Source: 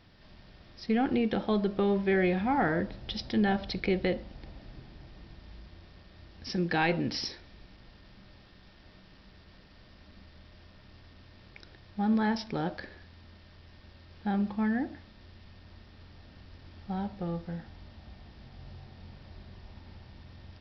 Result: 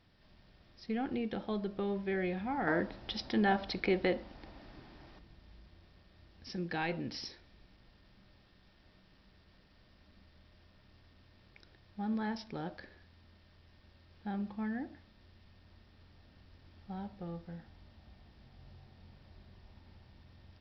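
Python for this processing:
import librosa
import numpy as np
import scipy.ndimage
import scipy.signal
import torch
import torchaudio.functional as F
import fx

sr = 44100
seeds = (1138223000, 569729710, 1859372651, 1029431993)

y = fx.curve_eq(x, sr, hz=(150.0, 290.0, 500.0, 920.0, 3200.0), db=(0, 8, 6, 11, 6), at=(2.67, 5.19))
y = F.gain(torch.from_numpy(y), -8.5).numpy()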